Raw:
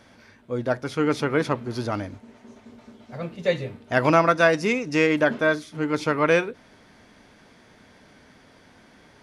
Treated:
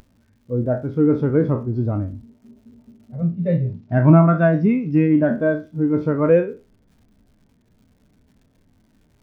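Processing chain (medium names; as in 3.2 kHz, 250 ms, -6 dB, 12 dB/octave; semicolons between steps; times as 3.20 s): spectral sustain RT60 0.39 s; tilt EQ -3.5 dB/octave; in parallel at -8.5 dB: saturation -18.5 dBFS, distortion -8 dB; on the sum: crackle 200 per s -26 dBFS; 3.22–5.30 s: cabinet simulation 110–6200 Hz, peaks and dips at 110 Hz +6 dB, 170 Hz +5 dB, 490 Hz -7 dB; spectral contrast expander 1.5:1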